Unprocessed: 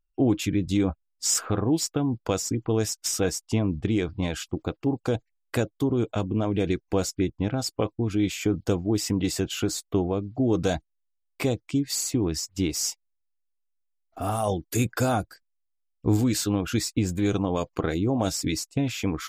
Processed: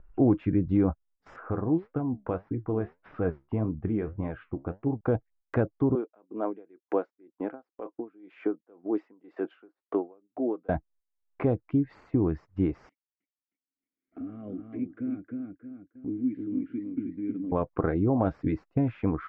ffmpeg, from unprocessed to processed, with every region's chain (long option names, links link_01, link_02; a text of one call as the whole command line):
ffmpeg -i in.wav -filter_complex "[0:a]asettb=1/sr,asplit=3[link_01][link_02][link_03];[link_01]atrim=end=1.364[link_04];[link_02]atrim=start=1.36:end=5.01,asetpts=PTS-STARTPTS,afade=type=in:duration=0.004:curve=qsin,afade=type=out:start_time=3.646:duration=0.004:curve=qsin,lowpass=frequency=3600:width=0.5412,lowpass=frequency=3600:width=1.3066,flanger=delay=6.5:depth=8.9:regen=64:speed=1.7:shape=triangular[link_05];[link_03]atrim=start=5.006[link_06];[link_04][link_05]acrossfade=duration=0.004:curve1=hsin:curve2=qsin[link_07];[link_07][link_06]acrossfade=duration=0.004:curve1=qsin:curve2=hsin,asettb=1/sr,asplit=3[link_08][link_09][link_10];[link_08]atrim=end=5.954[link_11];[link_09]atrim=start=5.95:end=10.69,asetpts=PTS-STARTPTS,afade=type=in:duration=0.004:curve=qsin,afade=type=out:start_time=4.736:duration=0.004:curve=qsin,highpass=frequency=290:width=0.5412,highpass=frequency=290:width=1.3066,aeval=exprs='val(0)*pow(10,-33*(0.5-0.5*cos(2*PI*2*n/s))/20)':channel_layout=same[link_12];[link_10]atrim=start=10.686[link_13];[link_11][link_12]acrossfade=duration=0.004:curve1=hsin:curve2=qsin[link_14];[link_14][link_13]acrossfade=duration=0.004:curve1=qsin:curve2=hsin,asettb=1/sr,asplit=3[link_15][link_16][link_17];[link_15]atrim=end=12.894[link_18];[link_16]atrim=start=12.89:end=17.52,asetpts=PTS-STARTPTS,afade=type=in:duration=0.004:curve=qsin,afade=type=out:start_time=4.626:duration=0.004:curve=qsin,asplit=3[link_19][link_20][link_21];[link_19]bandpass=frequency=270:width_type=q:width=8,volume=0dB[link_22];[link_20]bandpass=frequency=2290:width_type=q:width=8,volume=-6dB[link_23];[link_21]bandpass=frequency=3010:width_type=q:width=8,volume=-9dB[link_24];[link_22][link_23][link_24]amix=inputs=3:normalize=0,equalizer=frequency=3800:width_type=o:width=1.8:gain=-5.5,asplit=2[link_25][link_26];[link_26]adelay=312,lowpass=frequency=4800:poles=1,volume=-4dB,asplit=2[link_27][link_28];[link_28]adelay=312,lowpass=frequency=4800:poles=1,volume=0.16,asplit=2[link_29][link_30];[link_30]adelay=312,lowpass=frequency=4800:poles=1,volume=0.16[link_31];[link_25][link_27][link_29][link_31]amix=inputs=4:normalize=0,atrim=end_sample=204183[link_32];[link_17]atrim=start=17.516[link_33];[link_18][link_32]acrossfade=duration=0.004:curve1=hsin:curve2=qsin[link_34];[link_34][link_33]acrossfade=duration=0.004:curve1=qsin:curve2=hsin,acompressor=mode=upward:threshold=-31dB:ratio=2.5,lowpass=frequency=1600:width=0.5412,lowpass=frequency=1600:width=1.3066,agate=range=-14dB:threshold=-56dB:ratio=16:detection=peak" out.wav